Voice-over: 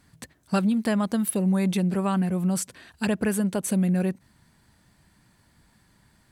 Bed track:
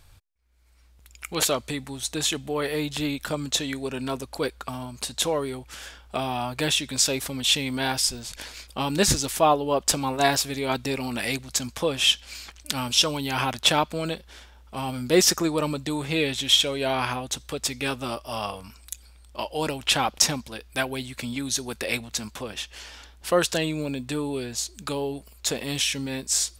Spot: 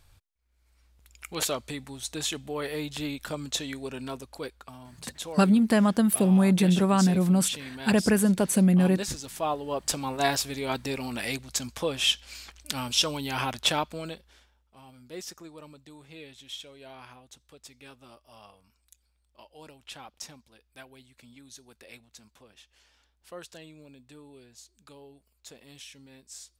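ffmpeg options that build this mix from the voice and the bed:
-filter_complex "[0:a]adelay=4850,volume=2.5dB[a];[1:a]volume=3dB,afade=t=out:st=3.89:d=0.81:silence=0.446684,afade=t=in:st=9.23:d=1.03:silence=0.375837,afade=t=out:st=13.56:d=1.12:silence=0.133352[b];[a][b]amix=inputs=2:normalize=0"

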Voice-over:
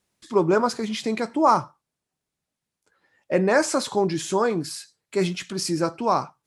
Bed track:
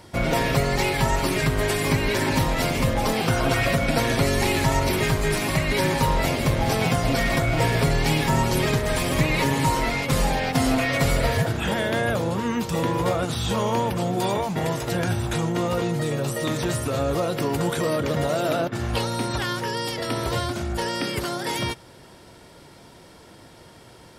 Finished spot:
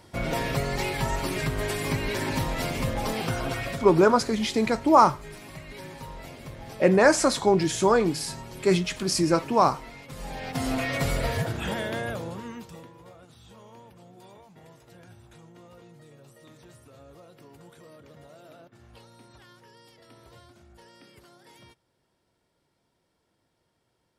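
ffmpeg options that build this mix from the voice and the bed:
-filter_complex "[0:a]adelay=3500,volume=1.5dB[a];[1:a]volume=8dB,afade=t=out:st=3.22:d=0.87:silence=0.211349,afade=t=in:st=10.16:d=0.65:silence=0.199526,afade=t=out:st=11.71:d=1.19:silence=0.0891251[b];[a][b]amix=inputs=2:normalize=0"

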